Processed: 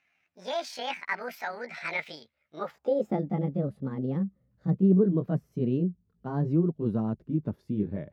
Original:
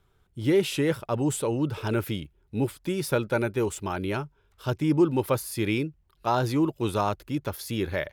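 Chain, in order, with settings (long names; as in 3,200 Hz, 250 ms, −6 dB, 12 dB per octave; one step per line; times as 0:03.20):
pitch glide at a constant tempo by +10 semitones ending unshifted
low-shelf EQ 400 Hz +3.5 dB
band-pass filter sweep 2,100 Hz → 200 Hz, 0:02.51–0:03.25
level +6.5 dB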